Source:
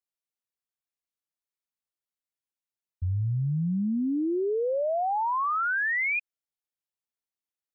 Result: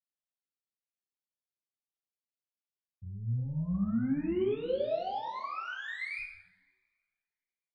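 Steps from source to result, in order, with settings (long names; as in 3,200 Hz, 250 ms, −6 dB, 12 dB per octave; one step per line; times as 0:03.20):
high-pass filter 190 Hz 12 dB per octave
parametric band 1,500 Hz −10 dB 1.6 octaves
floating-point word with a short mantissa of 8 bits
harmonic generator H 3 −29 dB, 4 −32 dB, 8 −22 dB, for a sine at −24.5 dBFS
high-frequency loss of the air 130 metres
echo with shifted repeats 125 ms, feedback 38%, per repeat −96 Hz, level −14 dB
coupled-rooms reverb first 0.53 s, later 2 s, from −27 dB, DRR −5.5 dB
phaser whose notches keep moving one way rising 1.3 Hz
level −7.5 dB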